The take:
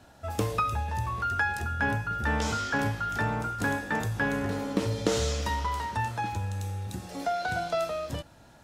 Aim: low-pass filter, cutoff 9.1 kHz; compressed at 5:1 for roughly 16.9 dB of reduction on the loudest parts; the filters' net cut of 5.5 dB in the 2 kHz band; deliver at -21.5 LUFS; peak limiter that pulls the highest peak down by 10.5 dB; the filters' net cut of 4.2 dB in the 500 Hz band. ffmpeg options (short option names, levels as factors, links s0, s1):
-af "lowpass=9100,equalizer=f=500:t=o:g=-5,equalizer=f=2000:t=o:g=-7,acompressor=threshold=0.00708:ratio=5,volume=18.8,alimiter=limit=0.224:level=0:latency=1"